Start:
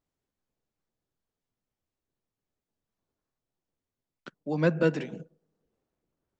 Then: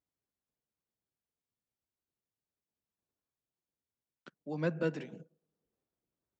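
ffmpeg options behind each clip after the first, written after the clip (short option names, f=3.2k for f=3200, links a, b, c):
-af "highpass=46,volume=-8.5dB"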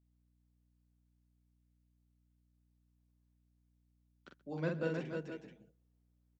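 -filter_complex "[0:a]asplit=2[a][b];[b]aecho=0:1:45|130|313|474|483:0.631|0.106|0.596|0.266|0.211[c];[a][c]amix=inputs=2:normalize=0,aeval=exprs='val(0)+0.000398*(sin(2*PI*60*n/s)+sin(2*PI*2*60*n/s)/2+sin(2*PI*3*60*n/s)/3+sin(2*PI*4*60*n/s)/4+sin(2*PI*5*60*n/s)/5)':c=same,volume=-4.5dB"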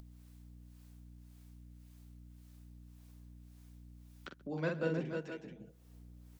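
-filter_complex "[0:a]acrossover=split=530[a][b];[a]aeval=exprs='val(0)*(1-0.5/2+0.5/2*cos(2*PI*1.8*n/s))':c=same[c];[b]aeval=exprs='val(0)*(1-0.5/2-0.5/2*cos(2*PI*1.8*n/s))':c=same[d];[c][d]amix=inputs=2:normalize=0,acompressor=mode=upward:threshold=-44dB:ratio=2.5,volume=4dB"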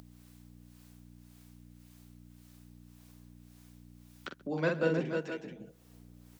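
-af "highpass=f=180:p=1,volume=6.5dB"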